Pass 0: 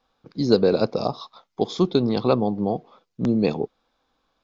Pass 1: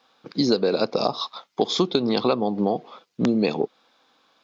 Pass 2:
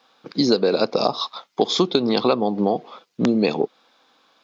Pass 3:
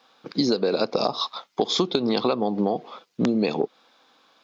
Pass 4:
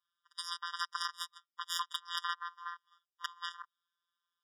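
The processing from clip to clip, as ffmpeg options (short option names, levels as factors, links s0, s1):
-af "highpass=190,equalizer=f=3200:w=0.44:g=6,acompressor=threshold=0.0631:ratio=6,volume=2.11"
-af "lowshelf=f=79:g=-9.5,volume=1.41"
-af "acompressor=threshold=0.112:ratio=3"
-af "afftfilt=real='hypot(re,im)*cos(PI*b)':imag='0':win_size=1024:overlap=0.75,aeval=exprs='0.447*(cos(1*acos(clip(val(0)/0.447,-1,1)))-cos(1*PI/2))+0.0398*(cos(2*acos(clip(val(0)/0.447,-1,1)))-cos(2*PI/2))+0.00562*(cos(3*acos(clip(val(0)/0.447,-1,1)))-cos(3*PI/2))+0.0112*(cos(6*acos(clip(val(0)/0.447,-1,1)))-cos(6*PI/2))+0.0562*(cos(7*acos(clip(val(0)/0.447,-1,1)))-cos(7*PI/2))':c=same,afftfilt=real='re*eq(mod(floor(b*sr/1024/950),2),1)':imag='im*eq(mod(floor(b*sr/1024/950),2),1)':win_size=1024:overlap=0.75,volume=0.708"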